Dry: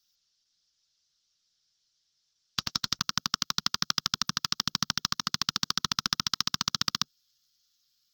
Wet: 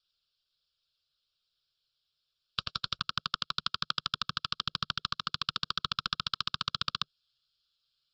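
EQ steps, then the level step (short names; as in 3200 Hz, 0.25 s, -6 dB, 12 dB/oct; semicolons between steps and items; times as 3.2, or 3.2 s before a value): LPF 7200 Hz 24 dB/oct; fixed phaser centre 1300 Hz, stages 8; 0.0 dB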